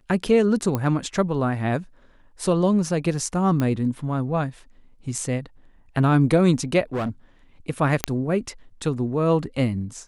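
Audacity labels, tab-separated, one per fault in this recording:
0.750000	0.750000	pop -11 dBFS
3.600000	3.600000	pop -12 dBFS
6.930000	7.100000	clipped -22 dBFS
8.040000	8.040000	pop -2 dBFS

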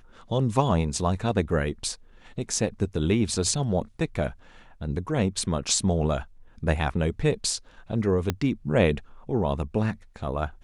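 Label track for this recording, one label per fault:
8.300000	8.300000	pop -10 dBFS

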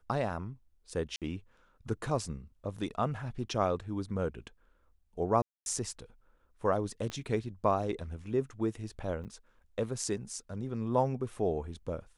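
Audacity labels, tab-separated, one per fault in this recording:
1.160000	1.220000	dropout 57 ms
5.420000	5.660000	dropout 241 ms
7.100000	7.100000	pop -24 dBFS
9.240000	9.250000	dropout 8.9 ms

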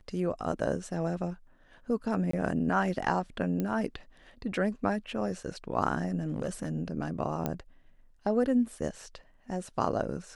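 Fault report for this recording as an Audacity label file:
2.310000	2.330000	dropout 24 ms
3.600000	3.600000	pop -19 dBFS
6.200000	6.690000	clipped -26.5 dBFS
7.460000	7.460000	pop -17 dBFS

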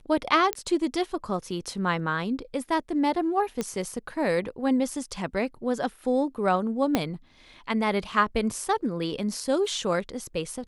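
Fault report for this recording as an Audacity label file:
0.530000	0.530000	pop -10 dBFS
3.610000	3.610000	pop -15 dBFS
6.950000	6.950000	pop -8 dBFS

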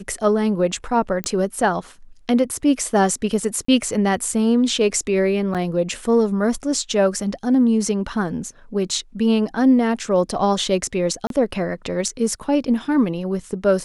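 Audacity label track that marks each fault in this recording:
1.240000	1.240000	pop -8 dBFS
3.650000	3.680000	dropout 34 ms
5.540000	5.550000	dropout 7.5 ms
11.270000	11.300000	dropout 32 ms

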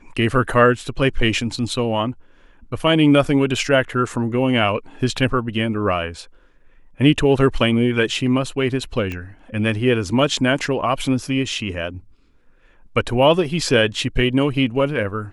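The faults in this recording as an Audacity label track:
9.120000	9.120000	pop -15 dBFS

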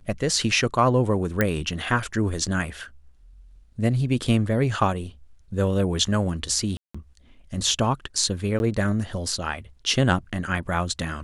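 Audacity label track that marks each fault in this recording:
1.410000	1.410000	pop -7 dBFS
6.770000	6.950000	dropout 175 ms
8.590000	8.600000	dropout 11 ms

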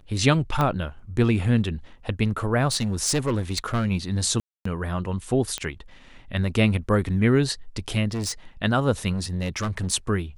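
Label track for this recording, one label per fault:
0.610000	0.610000	pop -11 dBFS
2.710000	3.870000	clipped -19 dBFS
4.400000	4.650000	dropout 254 ms
5.580000	5.580000	pop -13 dBFS
8.110000	8.320000	clipped -24.5 dBFS
9.120000	9.930000	clipped -22.5 dBFS

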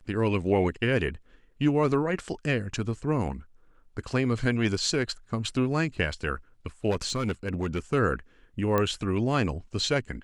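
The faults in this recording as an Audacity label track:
6.900000	7.790000	clipped -23 dBFS
8.780000	8.780000	pop -12 dBFS

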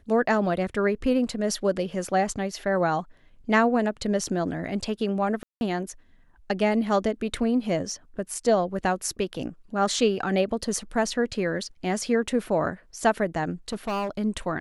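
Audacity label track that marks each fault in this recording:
5.430000	5.610000	dropout 181 ms
13.690000	14.100000	clipped -24.5 dBFS

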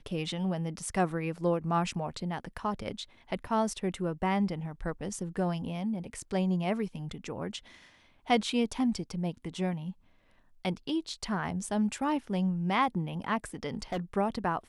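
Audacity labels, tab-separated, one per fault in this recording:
13.690000	14.000000	clipped -28.5 dBFS

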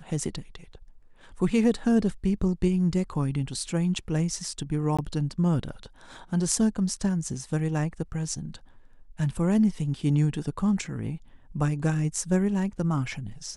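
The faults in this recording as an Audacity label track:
4.970000	4.990000	dropout 16 ms

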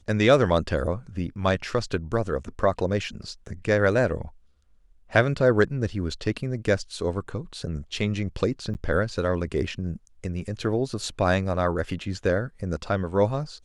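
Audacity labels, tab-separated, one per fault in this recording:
8.740000	8.750000	dropout 9.7 ms

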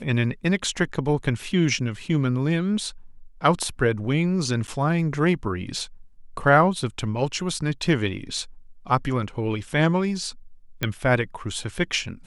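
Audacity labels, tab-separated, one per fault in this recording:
4.670000	4.680000	dropout 9.2 ms
10.830000	10.830000	pop -10 dBFS

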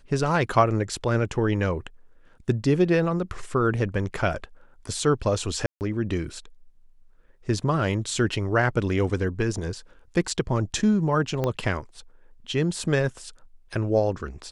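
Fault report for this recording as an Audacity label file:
5.660000	5.810000	dropout 149 ms
11.440000	11.440000	pop -13 dBFS

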